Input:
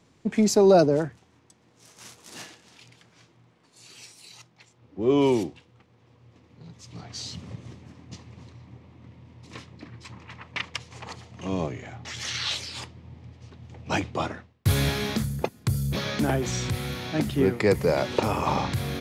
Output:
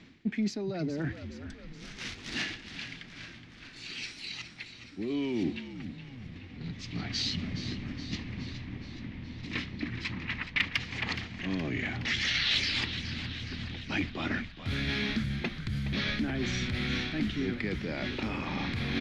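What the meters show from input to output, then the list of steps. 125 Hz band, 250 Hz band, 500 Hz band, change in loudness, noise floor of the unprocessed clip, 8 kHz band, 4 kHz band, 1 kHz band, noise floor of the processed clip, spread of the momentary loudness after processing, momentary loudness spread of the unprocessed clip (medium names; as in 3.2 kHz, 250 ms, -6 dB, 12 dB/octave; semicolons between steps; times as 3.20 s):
-6.0 dB, -5.0 dB, -15.5 dB, -7.5 dB, -61 dBFS, -10.0 dB, +1.5 dB, -12.0 dB, -49 dBFS, 13 LU, 23 LU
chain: in parallel at +2.5 dB: peak limiter -19.5 dBFS, peak gain reduction 11.5 dB; on the sum: distance through air 100 m; reverse; compression 12:1, threshold -29 dBFS, peak gain reduction 19.5 dB; reverse; hard clipper -21 dBFS, distortion -34 dB; graphic EQ 125/250/500/1000/2000/4000/8000 Hz -6/+6/-9/-9/+7/+4/-8 dB; frequency-shifting echo 419 ms, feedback 62%, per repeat -63 Hz, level -11 dB; trim +1.5 dB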